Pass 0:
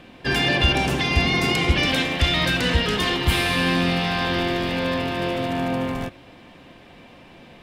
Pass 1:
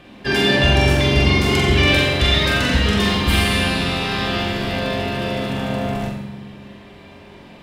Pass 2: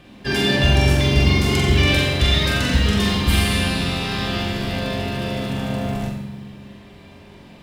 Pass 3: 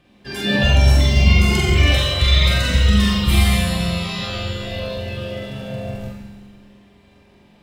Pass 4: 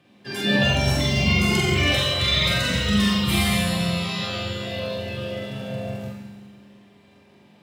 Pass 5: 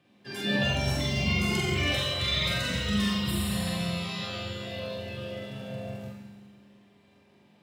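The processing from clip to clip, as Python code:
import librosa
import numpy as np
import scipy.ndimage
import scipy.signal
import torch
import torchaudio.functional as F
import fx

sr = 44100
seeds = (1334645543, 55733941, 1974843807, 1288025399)

y1 = fx.room_flutter(x, sr, wall_m=7.6, rt60_s=0.54)
y1 = fx.rev_fdn(y1, sr, rt60_s=1.6, lf_ratio=1.5, hf_ratio=0.55, size_ms=15.0, drr_db=1.5)
y2 = fx.bass_treble(y1, sr, bass_db=5, treble_db=5)
y2 = fx.quant_companded(y2, sr, bits=8)
y2 = y2 * 10.0 ** (-4.0 / 20.0)
y3 = fx.rev_schroeder(y2, sr, rt60_s=1.7, comb_ms=31, drr_db=2.5)
y3 = fx.noise_reduce_blind(y3, sr, reduce_db=10)
y4 = scipy.signal.sosfilt(scipy.signal.butter(4, 100.0, 'highpass', fs=sr, output='sos'), y3)
y4 = y4 * 10.0 ** (-1.5 / 20.0)
y5 = fx.spec_repair(y4, sr, seeds[0], start_s=3.27, length_s=0.41, low_hz=670.0, high_hz=7000.0, source='both')
y5 = y5 * 10.0 ** (-7.0 / 20.0)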